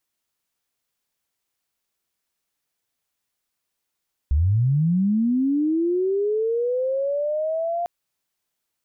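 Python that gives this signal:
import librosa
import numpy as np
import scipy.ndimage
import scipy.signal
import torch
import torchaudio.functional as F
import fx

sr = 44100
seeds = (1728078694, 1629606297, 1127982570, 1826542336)

y = fx.chirp(sr, length_s=3.55, from_hz=65.0, to_hz=700.0, law='linear', from_db=-15.5, to_db=-22.0)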